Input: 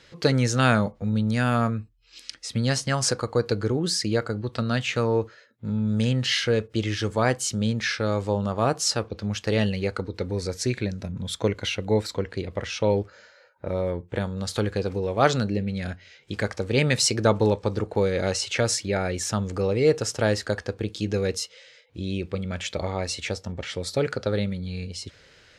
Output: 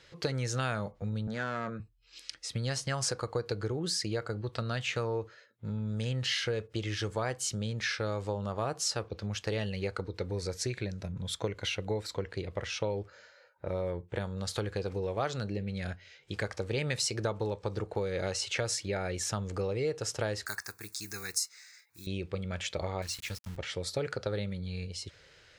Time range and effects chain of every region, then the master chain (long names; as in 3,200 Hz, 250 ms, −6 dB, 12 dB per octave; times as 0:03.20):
0:01.27–0:01.80: hard clipping −20 dBFS + loudspeaker in its box 190–6,700 Hz, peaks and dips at 200 Hz +6 dB, 310 Hz +4 dB, 560 Hz +4 dB, 1,500 Hz +6 dB, 2,800 Hz −9 dB, 5,200 Hz −9 dB
0:20.46–0:22.07: one scale factor per block 7 bits + spectral tilt +4.5 dB per octave + phaser with its sweep stopped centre 1,300 Hz, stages 4
0:23.02–0:23.57: notch comb filter 380 Hz + centre clipping without the shift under −36 dBFS + parametric band 590 Hz −14.5 dB 1.5 octaves
whole clip: downward compressor 6 to 1, threshold −23 dBFS; parametric band 240 Hz −8.5 dB 0.45 octaves; level −4.5 dB